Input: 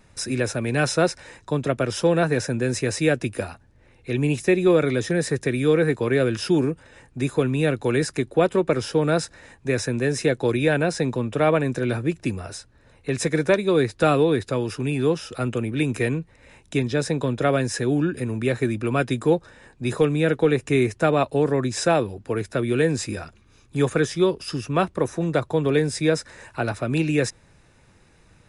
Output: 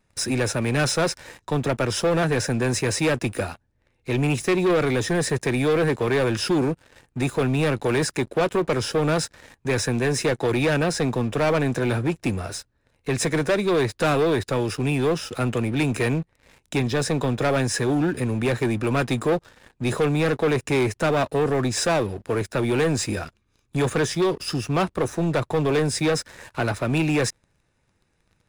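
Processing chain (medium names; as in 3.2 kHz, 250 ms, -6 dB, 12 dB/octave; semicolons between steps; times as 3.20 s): waveshaping leveller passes 3; trim -7.5 dB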